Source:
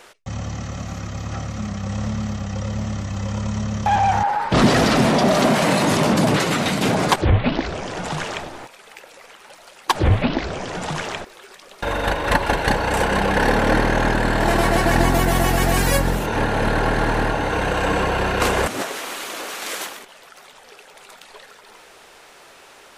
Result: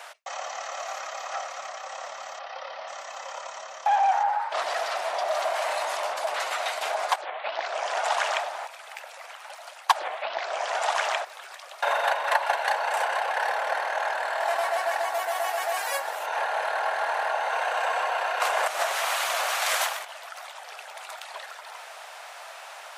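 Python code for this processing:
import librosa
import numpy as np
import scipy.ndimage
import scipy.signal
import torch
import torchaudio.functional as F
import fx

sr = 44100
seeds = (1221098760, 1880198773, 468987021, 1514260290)

y = fx.steep_lowpass(x, sr, hz=5100.0, slope=48, at=(2.39, 2.88))
y = fx.tilt_shelf(y, sr, db=4.5, hz=890.0)
y = fx.rider(y, sr, range_db=10, speed_s=0.5)
y = scipy.signal.sosfilt(scipy.signal.ellip(4, 1.0, 80, 650.0, 'highpass', fs=sr, output='sos'), y)
y = F.gain(torch.from_numpy(y), -3.0).numpy()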